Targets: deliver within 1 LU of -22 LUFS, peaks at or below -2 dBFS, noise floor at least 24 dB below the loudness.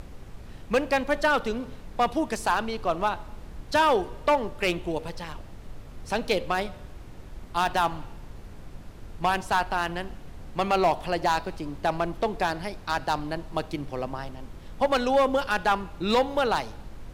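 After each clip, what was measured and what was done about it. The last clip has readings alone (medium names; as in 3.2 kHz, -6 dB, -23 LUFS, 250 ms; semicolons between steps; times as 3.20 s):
clipped samples 1.0%; clipping level -15.5 dBFS; noise floor -44 dBFS; noise floor target -51 dBFS; loudness -27.0 LUFS; peak level -15.5 dBFS; loudness target -22.0 LUFS
-> clip repair -15.5 dBFS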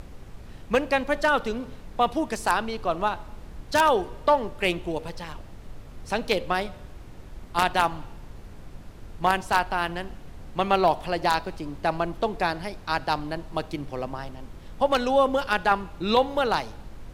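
clipped samples 0.0%; noise floor -44 dBFS; noise floor target -50 dBFS
-> noise print and reduce 6 dB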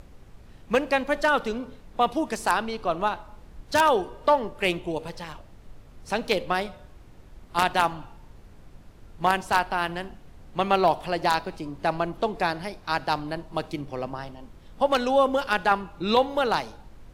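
noise floor -50 dBFS; loudness -25.5 LUFS; peak level -6.5 dBFS; loudness target -22.0 LUFS
-> trim +3.5 dB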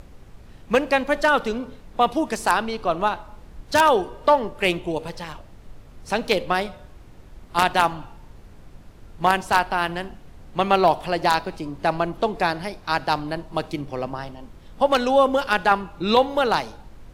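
loudness -22.0 LUFS; peak level -3.0 dBFS; noise floor -46 dBFS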